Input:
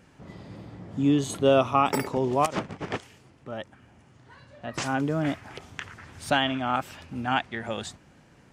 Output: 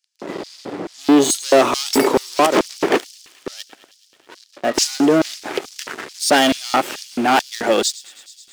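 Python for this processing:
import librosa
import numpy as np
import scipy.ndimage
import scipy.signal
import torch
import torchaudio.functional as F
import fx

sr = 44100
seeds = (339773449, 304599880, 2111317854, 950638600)

y = fx.leveller(x, sr, passes=5)
y = fx.echo_wet_highpass(y, sr, ms=107, feedback_pct=81, hz=3400.0, wet_db=-16.0)
y = fx.filter_lfo_highpass(y, sr, shape='square', hz=2.3, low_hz=350.0, high_hz=4900.0, q=2.2)
y = y * 10.0 ** (-1.5 / 20.0)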